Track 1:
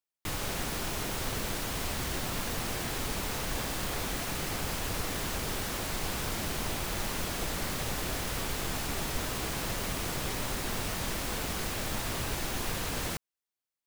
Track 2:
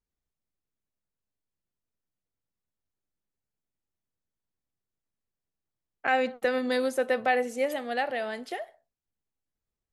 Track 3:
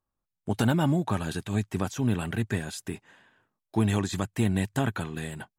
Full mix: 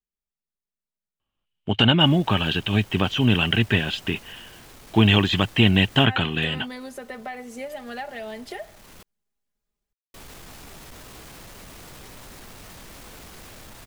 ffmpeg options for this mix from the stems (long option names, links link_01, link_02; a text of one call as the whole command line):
ffmpeg -i stem1.wav -i stem2.wav -i stem3.wav -filter_complex "[0:a]alimiter=level_in=3dB:limit=-24dB:level=0:latency=1:release=15,volume=-3dB,asoftclip=type=tanh:threshold=-33dB,adelay=1750,volume=-17dB,asplit=3[link_01][link_02][link_03];[link_01]atrim=end=9.03,asetpts=PTS-STARTPTS,afade=type=out:start_time=9.026:duration=0.004:curve=hsin[link_04];[link_02]atrim=start=9.03:end=10.14,asetpts=PTS-STARTPTS,volume=0[link_05];[link_03]atrim=start=10.14,asetpts=PTS-STARTPTS,afade=type=in:duration=0.004:curve=hsin[link_06];[link_04][link_05][link_06]concat=n=3:v=0:a=1[link_07];[1:a]aecho=1:1:4.9:0.67,acrossover=split=130[link_08][link_09];[link_09]acompressor=threshold=-36dB:ratio=3[link_10];[link_08][link_10]amix=inputs=2:normalize=0,volume=-9.5dB,asplit=2[link_11][link_12];[2:a]lowpass=frequency=3000:width_type=q:width=11,adelay=1200,volume=-1.5dB[link_13];[link_12]apad=whole_len=688558[link_14];[link_07][link_14]sidechaincompress=threshold=-51dB:ratio=8:attack=9.1:release=887[link_15];[link_15][link_11][link_13]amix=inputs=3:normalize=0,dynaudnorm=framelen=140:gausssize=21:maxgain=12.5dB" out.wav